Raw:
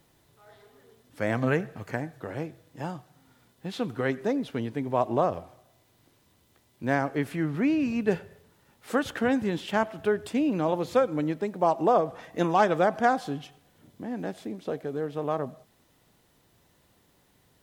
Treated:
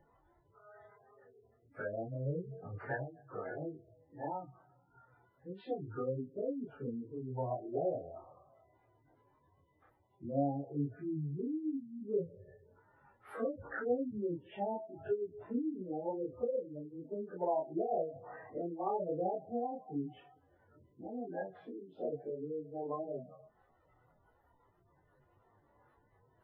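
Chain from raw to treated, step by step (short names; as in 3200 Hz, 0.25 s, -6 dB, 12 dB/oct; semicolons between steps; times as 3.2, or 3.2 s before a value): treble ducked by the level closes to 510 Hz, closed at -23.5 dBFS; spectral gate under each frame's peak -15 dB strong; EQ curve 110 Hz 0 dB, 210 Hz -9 dB, 360 Hz 0 dB, 670 Hz +3 dB, 1300 Hz +9 dB, 7200 Hz -29 dB, 11000 Hz +2 dB; in parallel at -3 dB: compressor 10:1, threshold -34 dBFS, peak gain reduction 14.5 dB; on the sum: plain phase-vocoder stretch 1.5×; chorus voices 4, 0.14 Hz, delay 25 ms, depth 4.5 ms; gain -3.5 dB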